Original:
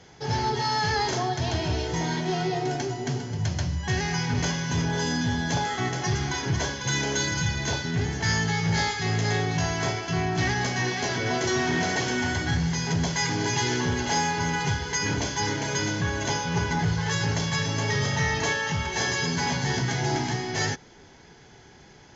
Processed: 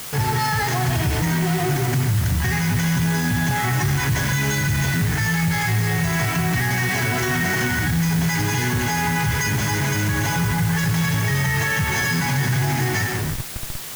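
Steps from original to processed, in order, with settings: hum notches 60/120 Hz; on a send at -8.5 dB: reverberation RT60 1.5 s, pre-delay 60 ms; on the sum: time stretch by phase-locked vocoder 0.63×; in parallel at -4.5 dB: Schmitt trigger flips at -42.5 dBFS; on the sum: graphic EQ 125/500/2000/4000 Hz +8/-6/+5/-6 dB; peak limiter -17 dBFS, peak gain reduction 8 dB; word length cut 6-bit, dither triangular; trim +3 dB

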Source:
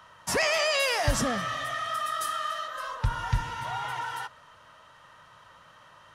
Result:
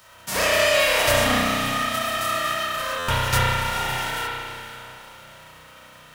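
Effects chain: formants flattened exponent 0.3; echo that smears into a reverb 488 ms, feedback 42%, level -13 dB; spring tank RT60 2 s, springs 32 ms, chirp 55 ms, DRR -7.5 dB; buffer glitch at 2.98 s, samples 512, times 8

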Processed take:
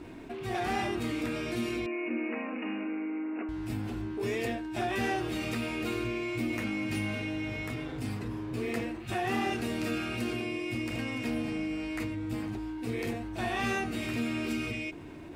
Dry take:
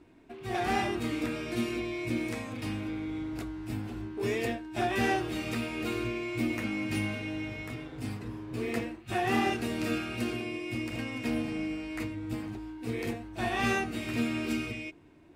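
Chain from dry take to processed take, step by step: 1.86–3.49 s: brick-wall FIR band-pass 200–2900 Hz; level flattener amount 50%; trim -4 dB

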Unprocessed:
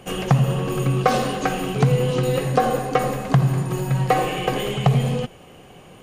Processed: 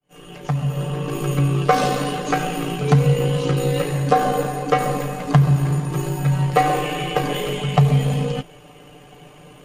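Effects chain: fade-in on the opening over 0.84 s; granular stretch 1.6×, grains 36 ms; trim +2 dB

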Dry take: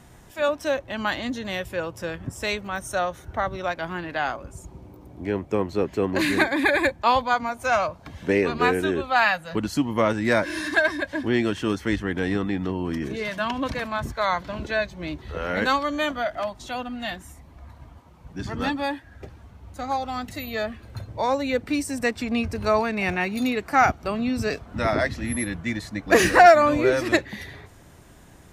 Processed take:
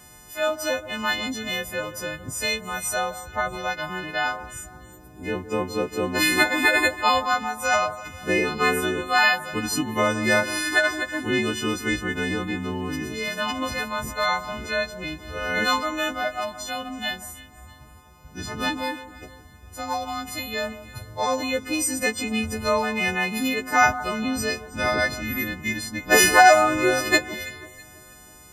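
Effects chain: partials quantised in pitch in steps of 3 st; echo whose repeats swap between lows and highs 163 ms, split 1.5 kHz, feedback 60%, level -13.5 dB; trim -1.5 dB

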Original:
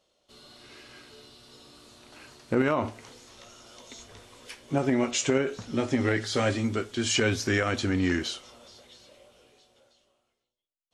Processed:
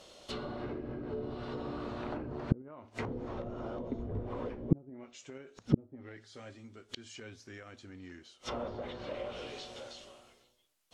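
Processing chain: inverted gate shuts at -26 dBFS, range -40 dB; low-pass that closes with the level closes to 370 Hz, closed at -45.5 dBFS; trim +16.5 dB

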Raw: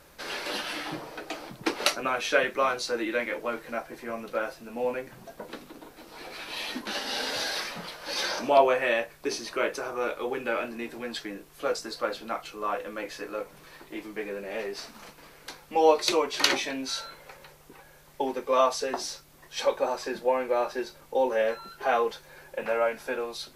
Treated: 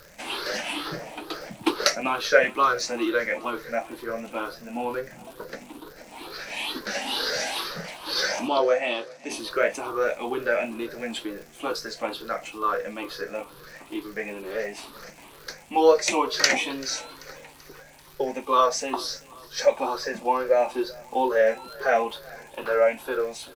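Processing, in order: drifting ripple filter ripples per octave 0.59, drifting +2.2 Hz, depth 13 dB; vibrato 2.4 Hz 40 cents; crackle 170 per s -39 dBFS; 8.48–9.30 s: cabinet simulation 220–7700 Hz, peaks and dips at 410 Hz -6 dB, 1 kHz -6 dB, 1.7 kHz -8 dB, 2.5 kHz -5 dB; on a send: feedback delay 387 ms, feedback 55%, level -23.5 dB; on the sum: trim +1 dB

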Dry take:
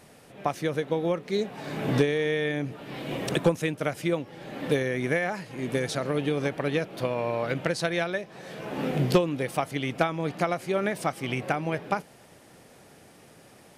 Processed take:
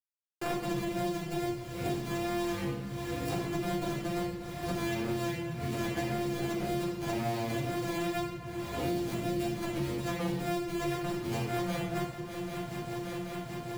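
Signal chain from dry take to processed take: sorted samples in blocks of 128 samples; spectral noise reduction 16 dB; gate with hold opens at -49 dBFS; bit crusher 10-bit; compressor with a negative ratio -29 dBFS, ratio -0.5; feedback comb 360 Hz, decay 0.19 s, harmonics all, mix 60%; wow and flutter 23 cents; shuffle delay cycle 781 ms, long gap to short 3:1, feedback 47%, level -20 dB; simulated room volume 230 m³, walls mixed, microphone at 3.8 m; three bands compressed up and down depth 100%; trim -9 dB

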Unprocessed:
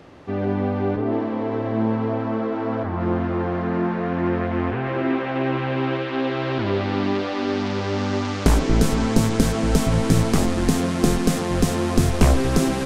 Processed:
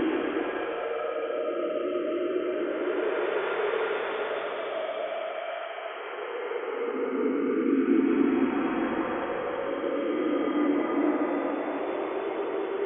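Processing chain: formants replaced by sine waves; Paulstretch 12×, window 0.25 s, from 9.45 s; trim -7.5 dB

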